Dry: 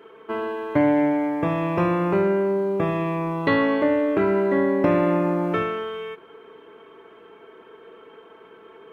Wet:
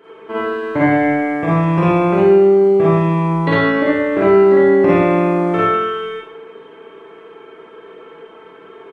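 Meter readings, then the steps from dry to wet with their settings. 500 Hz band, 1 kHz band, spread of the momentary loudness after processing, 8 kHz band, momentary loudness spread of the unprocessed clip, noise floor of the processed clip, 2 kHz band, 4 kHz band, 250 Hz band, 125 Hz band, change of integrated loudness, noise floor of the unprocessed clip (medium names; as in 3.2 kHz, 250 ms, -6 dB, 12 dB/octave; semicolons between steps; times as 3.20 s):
+9.0 dB, +8.0 dB, 11 LU, no reading, 10 LU, -41 dBFS, +8.0 dB, +7.0 dB, +6.5 dB, +10.0 dB, +8.0 dB, -49 dBFS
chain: Schroeder reverb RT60 0.59 s, DRR -7 dB; resampled via 22.05 kHz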